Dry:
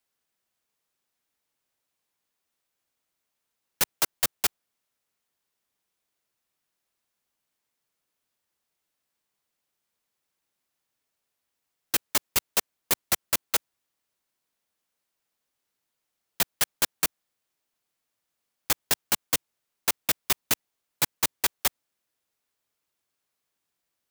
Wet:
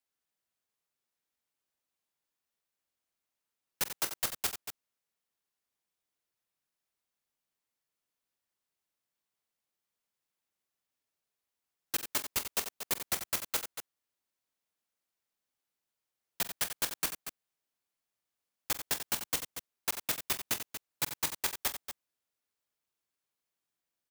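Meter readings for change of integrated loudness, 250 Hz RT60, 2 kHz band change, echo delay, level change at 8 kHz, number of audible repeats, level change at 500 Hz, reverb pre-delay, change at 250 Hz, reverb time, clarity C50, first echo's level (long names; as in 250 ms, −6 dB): −7.5 dB, no reverb audible, −7.0 dB, 46 ms, −7.0 dB, 3, −7.0 dB, no reverb audible, −7.0 dB, no reverb audible, no reverb audible, −14.5 dB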